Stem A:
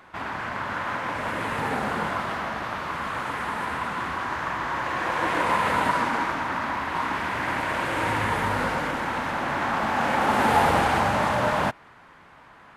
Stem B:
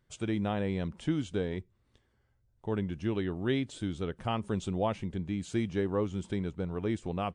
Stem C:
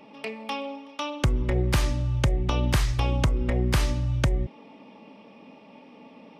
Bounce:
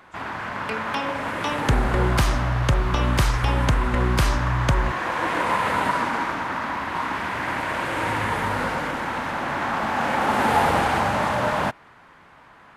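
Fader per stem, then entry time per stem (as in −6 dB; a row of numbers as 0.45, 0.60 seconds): +0.5, −16.5, +2.5 decibels; 0.00, 0.00, 0.45 seconds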